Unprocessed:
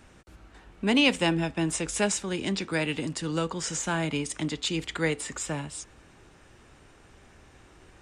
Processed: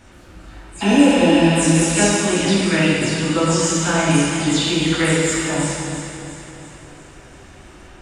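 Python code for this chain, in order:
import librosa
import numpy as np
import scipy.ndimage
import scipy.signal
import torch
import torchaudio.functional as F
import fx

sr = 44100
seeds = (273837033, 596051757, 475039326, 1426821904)

p1 = fx.spec_delay(x, sr, highs='early', ms=149)
p2 = fx.rev_plate(p1, sr, seeds[0], rt60_s=1.8, hf_ratio=0.95, predelay_ms=0, drr_db=-6.5)
p3 = fx.spec_repair(p2, sr, seeds[1], start_s=0.84, length_s=0.64, low_hz=680.0, high_hz=5800.0, source='after')
p4 = p3 + fx.echo_feedback(p3, sr, ms=342, feedback_pct=54, wet_db=-11, dry=0)
y = p4 * 10.0 ** (4.5 / 20.0)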